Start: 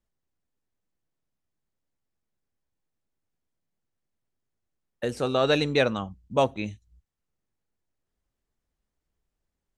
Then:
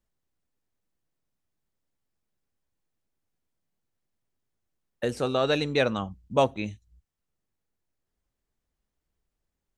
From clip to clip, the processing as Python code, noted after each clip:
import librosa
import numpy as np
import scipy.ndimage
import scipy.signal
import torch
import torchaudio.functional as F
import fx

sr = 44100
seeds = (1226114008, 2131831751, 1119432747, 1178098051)

y = fx.rider(x, sr, range_db=3, speed_s=0.5)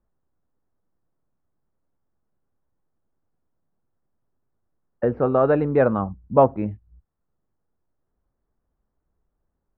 y = scipy.signal.sosfilt(scipy.signal.butter(4, 1400.0, 'lowpass', fs=sr, output='sos'), x)
y = y * librosa.db_to_amplitude(7.0)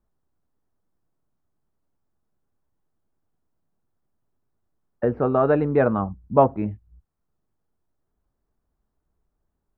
y = fx.notch(x, sr, hz=520.0, q=13.0)